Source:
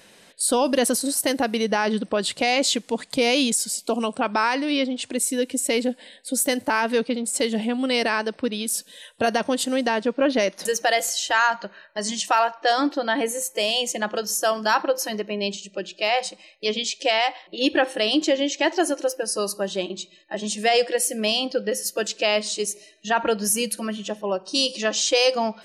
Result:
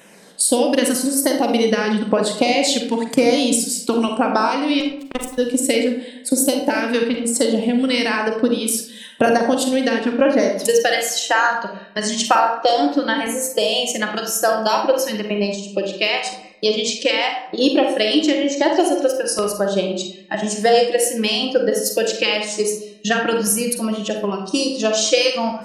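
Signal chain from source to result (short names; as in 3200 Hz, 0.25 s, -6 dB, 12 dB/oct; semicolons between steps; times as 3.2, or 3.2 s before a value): transient shaper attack +7 dB, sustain -1 dB; in parallel at +1 dB: compressor, threshold -25 dBFS, peak gain reduction 14.5 dB; on the sum: resonant low shelf 110 Hz -12 dB, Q 1.5; LFO notch saw down 0.98 Hz 400–4800 Hz; 4.8–5.38 power-law curve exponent 3; on a send at -2.5 dB: reverb RT60 0.70 s, pre-delay 38 ms; on the sum: gain -2 dB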